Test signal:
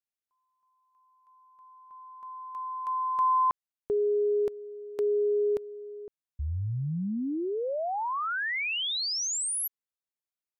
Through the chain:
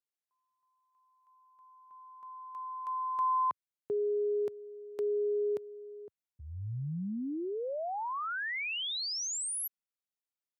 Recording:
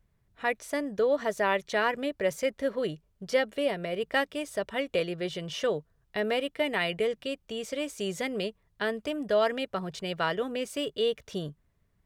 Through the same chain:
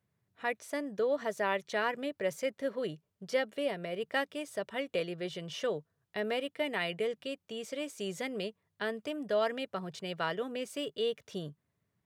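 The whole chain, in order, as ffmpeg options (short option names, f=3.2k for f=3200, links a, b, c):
-af "highpass=f=97:w=0.5412,highpass=f=97:w=1.3066,volume=-5dB"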